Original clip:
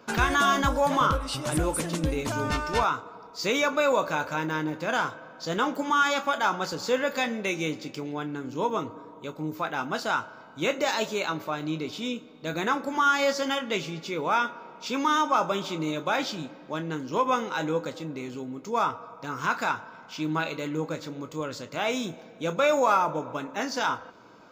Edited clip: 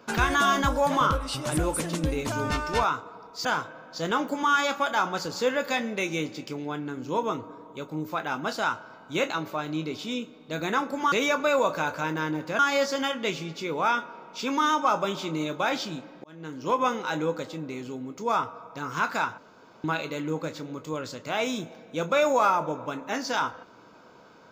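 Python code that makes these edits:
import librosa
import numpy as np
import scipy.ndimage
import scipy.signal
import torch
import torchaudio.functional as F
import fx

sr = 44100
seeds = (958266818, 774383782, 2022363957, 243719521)

y = fx.edit(x, sr, fx.move(start_s=3.45, length_s=1.47, to_s=13.06),
    fx.cut(start_s=10.77, length_s=0.47),
    fx.fade_in_span(start_s=16.71, length_s=0.47),
    fx.room_tone_fill(start_s=19.85, length_s=0.46), tone=tone)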